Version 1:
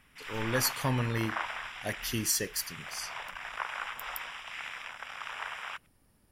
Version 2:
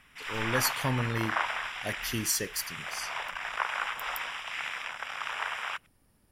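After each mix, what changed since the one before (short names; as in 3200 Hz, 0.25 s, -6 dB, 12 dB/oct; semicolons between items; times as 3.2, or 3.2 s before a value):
background +5.0 dB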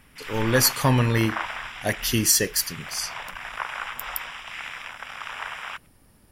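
speech +10.0 dB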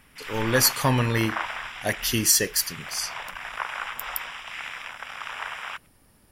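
speech: add low shelf 380 Hz -3.5 dB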